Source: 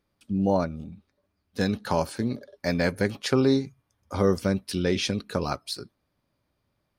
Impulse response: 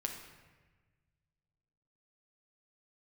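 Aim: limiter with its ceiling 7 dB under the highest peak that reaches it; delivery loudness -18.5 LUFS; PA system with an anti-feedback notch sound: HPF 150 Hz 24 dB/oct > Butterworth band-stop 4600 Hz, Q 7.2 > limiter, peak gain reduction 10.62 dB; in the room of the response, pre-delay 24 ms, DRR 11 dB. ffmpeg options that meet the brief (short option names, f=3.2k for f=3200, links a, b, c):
-filter_complex "[0:a]alimiter=limit=-15.5dB:level=0:latency=1,asplit=2[a][b];[1:a]atrim=start_sample=2205,adelay=24[c];[b][c]afir=irnorm=-1:irlink=0,volume=-11.5dB[d];[a][d]amix=inputs=2:normalize=0,highpass=f=150:w=0.5412,highpass=f=150:w=1.3066,asuperstop=centerf=4600:order=8:qfactor=7.2,volume=17.5dB,alimiter=limit=-7.5dB:level=0:latency=1"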